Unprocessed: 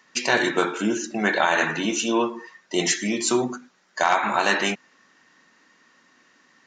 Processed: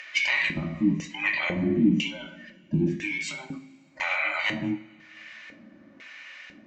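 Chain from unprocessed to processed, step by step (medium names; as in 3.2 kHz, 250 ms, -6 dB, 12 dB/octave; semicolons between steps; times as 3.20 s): every band turned upside down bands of 500 Hz; 1.28–3.35 s: resonant low shelf 560 Hz +9 dB, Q 1.5; upward compressor, threshold -36 dBFS; peak limiter -11 dBFS, peak gain reduction 9 dB; compression 1.5:1, threshold -34 dBFS, peak gain reduction 7 dB; LFO band-pass square 1 Hz 220–2500 Hz; small resonant body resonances 490/2200 Hz, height 12 dB, ringing for 20 ms; reverberation, pre-delay 3 ms, DRR 6 dB; trim +6.5 dB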